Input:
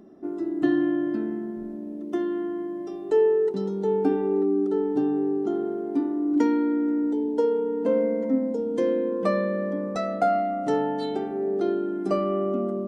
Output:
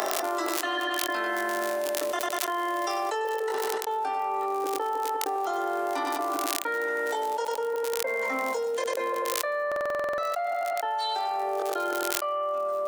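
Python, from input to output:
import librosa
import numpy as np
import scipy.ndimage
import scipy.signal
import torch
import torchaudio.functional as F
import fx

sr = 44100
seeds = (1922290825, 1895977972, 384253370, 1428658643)

y = fx.step_gate(x, sr, bpm=97, pattern='xxx.x..xx', floor_db=-60.0, edge_ms=4.5)
y = fx.echo_feedback(y, sr, ms=97, feedback_pct=34, wet_db=-10.0)
y = fx.dmg_crackle(y, sr, seeds[0], per_s=41.0, level_db=-45.0)
y = scipy.signal.sosfilt(scipy.signal.butter(4, 710.0, 'highpass', fs=sr, output='sos'), y)
y = fx.high_shelf(y, sr, hz=4900.0, db=6.0)
y = fx.doubler(y, sr, ms=22.0, db=-3)
y = fx.buffer_glitch(y, sr, at_s=(9.67,), block=2048, repeats=10)
y = fx.env_flatten(y, sr, amount_pct=100)
y = F.gain(torch.from_numpy(y), -1.5).numpy()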